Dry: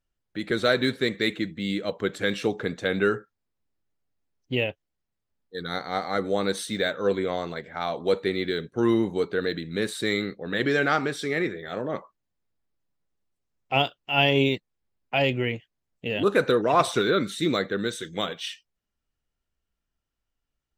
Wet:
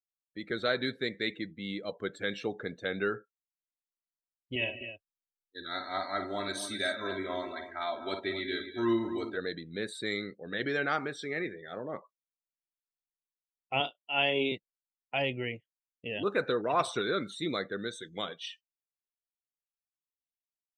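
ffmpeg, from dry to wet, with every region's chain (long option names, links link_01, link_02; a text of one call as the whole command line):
ffmpeg -i in.wav -filter_complex "[0:a]asettb=1/sr,asplit=3[link_01][link_02][link_03];[link_01]atrim=end=4.554[link_04];[link_02]atrim=start=4.55:end=9.37,asetpts=PTS-STARTPTS,afade=type=in:duration=0.004:curve=qsin,afade=type=out:start_time=4.816:duration=0.004:curve=qsin,equalizer=frequency=420:width=1.1:gain=-4.5,aecho=1:1:3.1:0.88,atrim=end_sample=212562,aecho=1:1:52|144|194|258:0.422|0.141|0.158|0.316,atrim=end_sample=212562[link_05];[link_03]atrim=start=9.366[link_06];[link_04][link_05]acrossfade=duration=0.004:curve1=hsin:curve2=qsin[link_07];[link_07][link_06]acrossfade=duration=0.004:curve1=qsin:curve2=hsin,asettb=1/sr,asplit=3[link_08][link_09][link_10];[link_08]atrim=end=13.804[link_11];[link_09]atrim=start=13.8:end=14.52,asetpts=PTS-STARTPTS,afade=type=in:duration=0.004:curve=qsin,afade=type=out:start_time=0.716:duration=0.004:curve=qsin,highpass=frequency=170:width=0.5412,highpass=frequency=170:width=1.3066,asplit=2[link_12][link_13];[link_13]adelay=34,volume=-11dB[link_14];[link_12][link_14]amix=inputs=2:normalize=0,atrim=end_sample=31752[link_15];[link_10]atrim=start=14.516[link_16];[link_11][link_15]acrossfade=duration=0.004:curve1=hsin:curve2=qsin[link_17];[link_17][link_16]acrossfade=duration=0.004:curve1=qsin:curve2=hsin,agate=range=-8dB:threshold=-44dB:ratio=16:detection=peak,afftdn=noise_reduction=18:noise_floor=-40,lowshelf=frequency=410:gain=-4.5,volume=-6.5dB" out.wav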